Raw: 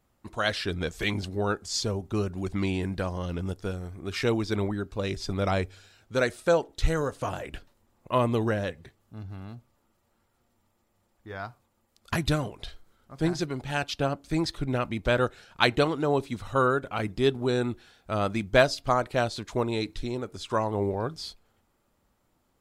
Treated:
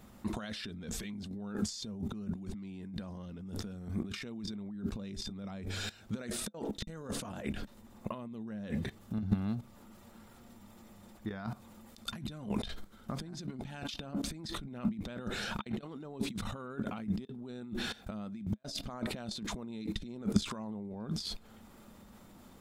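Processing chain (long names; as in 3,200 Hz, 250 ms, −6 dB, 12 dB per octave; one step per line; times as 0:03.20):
output level in coarse steps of 19 dB
dynamic equaliser 210 Hz, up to +6 dB, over −54 dBFS, Q 2
compressor whose output falls as the input rises −46 dBFS, ratio −0.5
hollow resonant body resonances 210/3,600 Hz, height 11 dB, ringing for 65 ms
level +6 dB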